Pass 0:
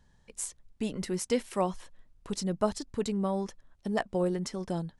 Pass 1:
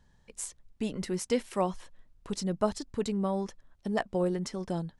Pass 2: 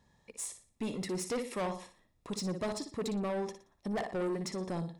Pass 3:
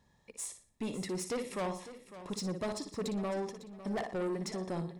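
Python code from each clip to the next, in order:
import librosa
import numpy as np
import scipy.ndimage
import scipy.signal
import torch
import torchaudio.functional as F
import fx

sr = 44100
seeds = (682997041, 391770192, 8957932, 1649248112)

y1 = fx.high_shelf(x, sr, hz=10000.0, db=-5.0)
y2 = fx.notch_comb(y1, sr, f0_hz=1500.0)
y2 = fx.room_flutter(y2, sr, wall_m=10.1, rt60_s=0.36)
y2 = 10.0 ** (-31.5 / 20.0) * np.tanh(y2 / 10.0 ** (-31.5 / 20.0))
y2 = F.gain(torch.from_numpy(y2), 1.5).numpy()
y3 = fx.echo_feedback(y2, sr, ms=553, feedback_pct=27, wet_db=-14)
y3 = F.gain(torch.from_numpy(y3), -1.0).numpy()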